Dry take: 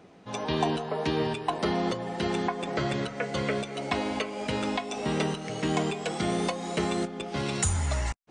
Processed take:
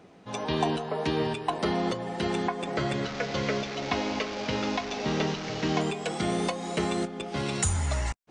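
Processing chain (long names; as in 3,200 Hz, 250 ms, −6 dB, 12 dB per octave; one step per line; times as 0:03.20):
0:03.04–0:05.81: linear delta modulator 32 kbit/s, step −29.5 dBFS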